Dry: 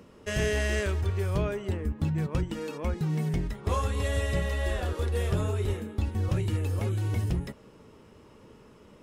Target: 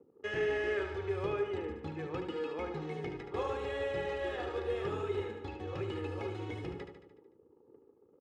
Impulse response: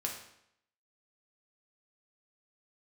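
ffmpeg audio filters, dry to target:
-filter_complex "[0:a]asplit=2[s0][s1];[1:a]atrim=start_sample=2205,afade=t=out:st=0.2:d=0.01,atrim=end_sample=9261[s2];[s1][s2]afir=irnorm=-1:irlink=0,volume=0.211[s3];[s0][s3]amix=inputs=2:normalize=0,acrossover=split=2700[s4][s5];[s5]acompressor=threshold=0.00631:ratio=4:attack=1:release=60[s6];[s4][s6]amix=inputs=2:normalize=0,anlmdn=0.0251,highpass=230,lowpass=3800,aecho=1:1:2.4:0.66,atempo=1.1,aecho=1:1:74|148|222|296|370|444|518:0.422|0.24|0.137|0.0781|0.0445|0.0254|0.0145,volume=0.501"

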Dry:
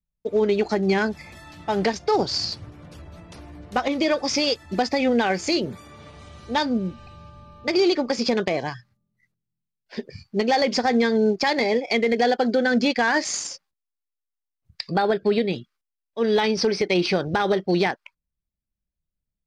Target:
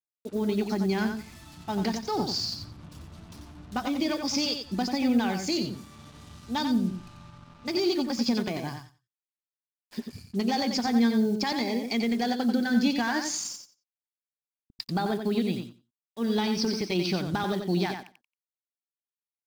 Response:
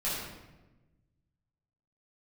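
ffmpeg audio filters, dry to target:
-af "acrusher=bits=6:mix=0:aa=0.5,equalizer=f=250:t=o:w=1:g=5,equalizer=f=500:t=o:w=1:g=-11,equalizer=f=2000:t=o:w=1:g=-7,aecho=1:1:90|180|270:0.473|0.0804|0.0137,volume=0.631"

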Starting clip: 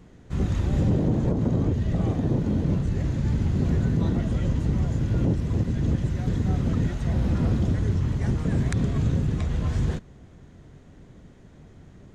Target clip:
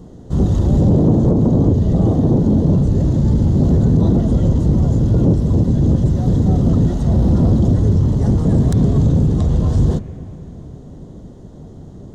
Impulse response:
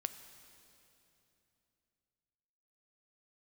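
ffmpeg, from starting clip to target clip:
-filter_complex "[0:a]lowshelf=f=150:g=-5,asoftclip=type=tanh:threshold=0.0891,equalizer=f=1600:w=1.1:g=-12,asplit=2[s0][s1];[s1]lowpass=f=2400:w=0.5412,lowpass=f=2400:w=1.3066[s2];[1:a]atrim=start_sample=2205[s3];[s2][s3]afir=irnorm=-1:irlink=0,volume=1.41[s4];[s0][s4]amix=inputs=2:normalize=0,volume=2.51"

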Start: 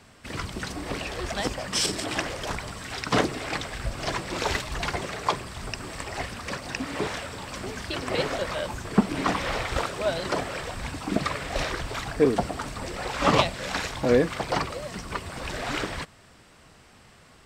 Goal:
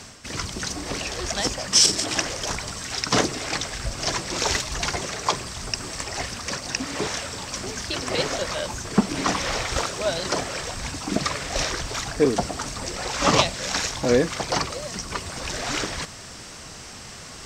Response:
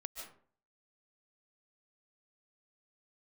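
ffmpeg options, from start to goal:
-af "equalizer=f=6100:t=o:w=0.9:g=12.5,areverse,acompressor=mode=upward:threshold=0.0316:ratio=2.5,areverse,volume=1.12"

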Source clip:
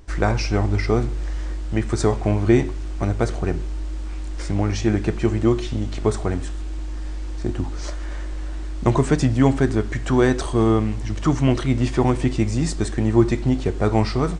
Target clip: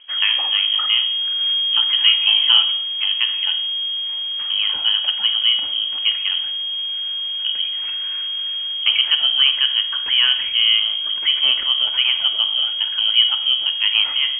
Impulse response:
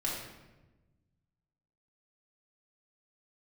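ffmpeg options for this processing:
-filter_complex "[0:a]lowpass=f=2800:t=q:w=0.5098,lowpass=f=2800:t=q:w=0.6013,lowpass=f=2800:t=q:w=0.9,lowpass=f=2800:t=q:w=2.563,afreqshift=-3300,asettb=1/sr,asplit=3[s0][s1][s2];[s0]atrim=end=1.404[s3];[s1]atrim=start=1.4:end=2.77,asetpts=PTS-STARTPTS,afade=t=in:d=0.004:c=qsin,afade=t=out:st=1.366:d=0.004:c=qsin,aecho=1:1:5.9:0.81,atrim=end_sample=60417[s4];[s2]atrim=start=2.766[s5];[s3][s4]acrossfade=d=0.004:c1=hsin:c2=qsin[s6];[s6][s5]acrossfade=d=0.004:c1=qsin:c2=hsin,asplit=2[s7][s8];[1:a]atrim=start_sample=2205,afade=t=out:st=0.23:d=0.01,atrim=end_sample=10584,adelay=48[s9];[s8][s9]afir=irnorm=-1:irlink=0,volume=0.168[s10];[s7][s10]amix=inputs=2:normalize=0"

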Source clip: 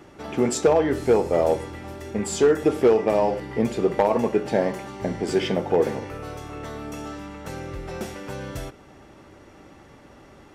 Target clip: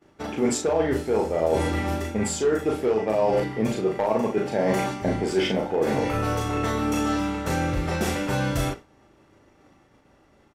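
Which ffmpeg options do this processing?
-filter_complex "[0:a]agate=range=0.0224:threshold=0.0178:ratio=3:detection=peak,areverse,acompressor=threshold=0.0316:ratio=10,areverse,asplit=2[s0][s1];[s1]adelay=37,volume=0.708[s2];[s0][s2]amix=inputs=2:normalize=0,volume=2.82"

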